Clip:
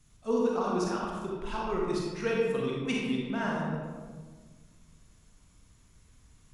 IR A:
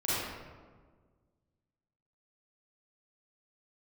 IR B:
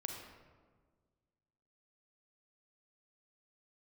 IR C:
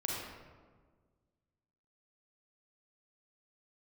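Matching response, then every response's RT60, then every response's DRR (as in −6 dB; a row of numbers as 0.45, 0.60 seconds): C; 1.6, 1.6, 1.6 seconds; −11.0, 2.0, −3.5 decibels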